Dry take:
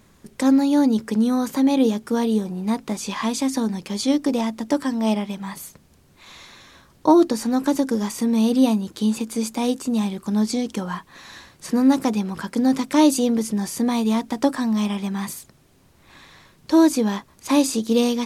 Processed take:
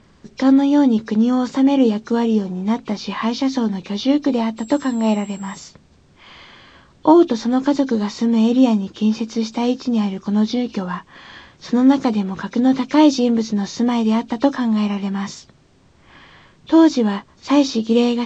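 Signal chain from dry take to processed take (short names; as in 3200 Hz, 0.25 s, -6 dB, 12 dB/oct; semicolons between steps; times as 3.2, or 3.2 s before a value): nonlinear frequency compression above 2300 Hz 1.5:1; air absorption 65 m; 4.57–5.59 whine 7600 Hz -46 dBFS; gain +3.5 dB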